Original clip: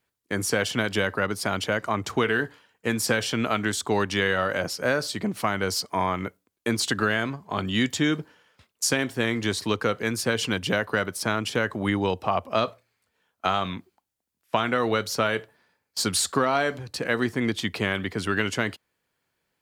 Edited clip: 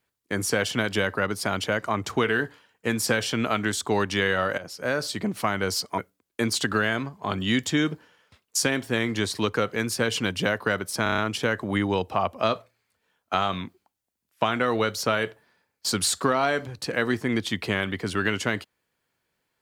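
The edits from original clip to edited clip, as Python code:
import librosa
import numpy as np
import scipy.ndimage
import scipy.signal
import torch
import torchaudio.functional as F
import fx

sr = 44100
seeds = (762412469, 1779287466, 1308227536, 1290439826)

y = fx.edit(x, sr, fx.fade_in_from(start_s=4.58, length_s=0.47, floor_db=-15.0),
    fx.cut(start_s=5.98, length_s=0.27),
    fx.stutter(start_s=11.3, slice_s=0.03, count=6), tone=tone)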